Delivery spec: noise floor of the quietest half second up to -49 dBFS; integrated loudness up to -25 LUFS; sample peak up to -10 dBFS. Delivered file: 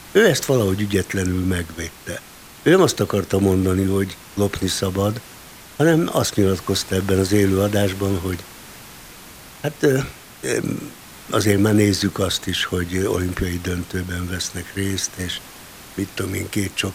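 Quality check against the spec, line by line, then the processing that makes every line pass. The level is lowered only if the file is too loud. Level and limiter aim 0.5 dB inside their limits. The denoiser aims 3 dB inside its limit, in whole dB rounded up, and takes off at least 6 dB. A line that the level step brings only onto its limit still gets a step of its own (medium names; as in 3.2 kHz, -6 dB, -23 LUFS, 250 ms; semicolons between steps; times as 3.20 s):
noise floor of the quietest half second -41 dBFS: fail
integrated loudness -20.5 LUFS: fail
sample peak -2.0 dBFS: fail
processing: noise reduction 6 dB, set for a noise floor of -41 dBFS; trim -5 dB; peak limiter -10.5 dBFS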